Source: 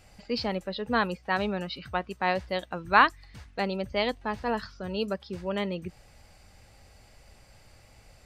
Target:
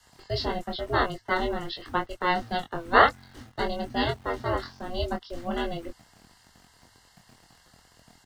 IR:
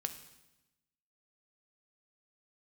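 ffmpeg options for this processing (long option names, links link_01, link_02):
-filter_complex "[0:a]aeval=exprs='val(0)*sin(2*PI*270*n/s)':channel_layout=same,asuperstop=centerf=2500:order=20:qfactor=4.9,lowshelf=frequency=120:gain=-4,acrossover=split=150|770|2700[link_01][link_02][link_03][link_04];[link_02]aeval=exprs='val(0)*gte(abs(val(0)),0.00237)':channel_layout=same[link_05];[link_01][link_05][link_03][link_04]amix=inputs=4:normalize=0,asplit=2[link_06][link_07];[link_07]adelay=23,volume=-4.5dB[link_08];[link_06][link_08]amix=inputs=2:normalize=0,afreqshift=-98,volume=3.5dB"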